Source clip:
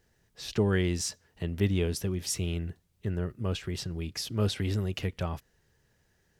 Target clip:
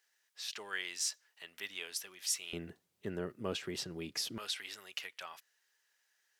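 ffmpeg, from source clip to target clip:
-af "asetnsamples=n=441:p=0,asendcmd='2.53 highpass f 260;4.38 highpass f 1400',highpass=1400,volume=0.841"

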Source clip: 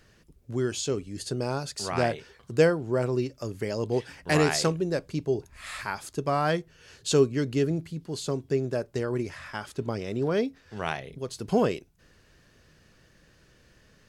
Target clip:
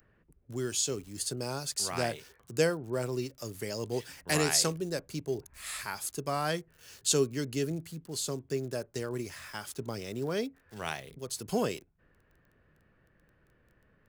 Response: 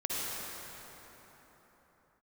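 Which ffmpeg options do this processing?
-filter_complex "[0:a]aemphasis=mode=production:type=75fm,acrossover=split=130|1500|1900[s0][s1][s2][s3];[s3]acrusher=bits=7:mix=0:aa=0.000001[s4];[s0][s1][s2][s4]amix=inputs=4:normalize=0,volume=0.501"

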